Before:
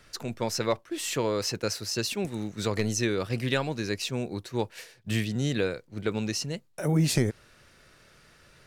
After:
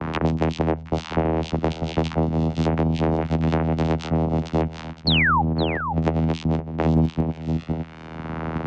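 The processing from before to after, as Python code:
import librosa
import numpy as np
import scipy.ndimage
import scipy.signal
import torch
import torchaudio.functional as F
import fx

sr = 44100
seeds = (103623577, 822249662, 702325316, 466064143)

p1 = fx.hum_notches(x, sr, base_hz=60, count=4)
p2 = fx.vocoder(p1, sr, bands=4, carrier='saw', carrier_hz=80.3)
p3 = fx.env_lowpass_down(p2, sr, base_hz=1100.0, full_db=-22.5)
p4 = fx.level_steps(p3, sr, step_db=20)
p5 = p3 + (p4 * librosa.db_to_amplitude(1.0))
p6 = fx.env_lowpass(p5, sr, base_hz=1400.0, full_db=-25.0)
p7 = fx.spec_paint(p6, sr, seeds[0], shape='fall', start_s=5.07, length_s=0.35, low_hz=760.0, high_hz=4500.0, level_db=-19.0)
p8 = p7 + fx.echo_single(p7, sr, ms=512, db=-16.5, dry=0)
p9 = fx.band_squash(p8, sr, depth_pct=100)
y = p9 * librosa.db_to_amplitude(5.5)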